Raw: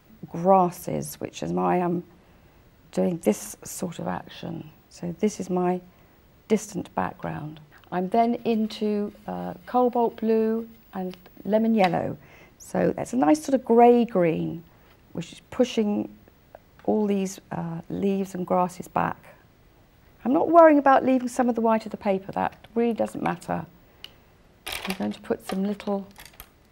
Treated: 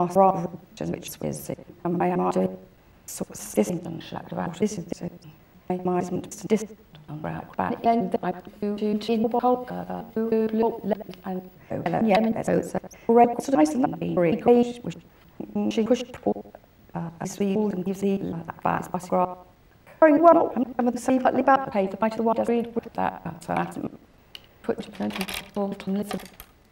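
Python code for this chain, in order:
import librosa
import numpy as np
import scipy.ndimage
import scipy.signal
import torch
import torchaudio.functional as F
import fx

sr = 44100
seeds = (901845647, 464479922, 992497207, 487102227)

y = fx.block_reorder(x, sr, ms=154.0, group=5)
y = fx.echo_filtered(y, sr, ms=91, feedback_pct=28, hz=2300.0, wet_db=-13.5)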